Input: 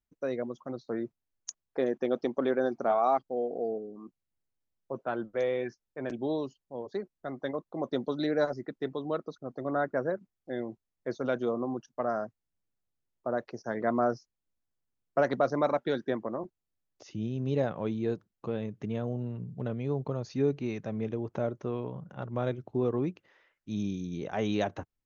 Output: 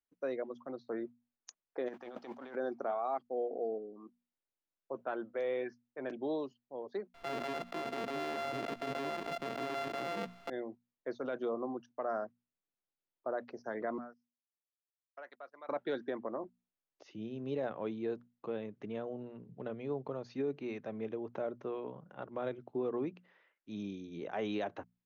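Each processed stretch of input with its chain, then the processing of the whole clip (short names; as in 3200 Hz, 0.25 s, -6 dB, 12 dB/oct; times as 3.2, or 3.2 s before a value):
1.87–2.54 spectral whitening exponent 0.6 + bell 800 Hz +7 dB 2.4 oct + negative-ratio compressor -36 dBFS
7.14–10.5 sample sorter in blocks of 64 samples + fast leveller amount 100%
13.98–15.69 treble ducked by the level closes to 2100 Hz, closed at -22 dBFS + differentiator + gate -55 dBFS, range -21 dB
whole clip: three-band isolator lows -13 dB, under 230 Hz, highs -16 dB, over 4400 Hz; notches 60/120/180/240 Hz; limiter -23.5 dBFS; gain -3.5 dB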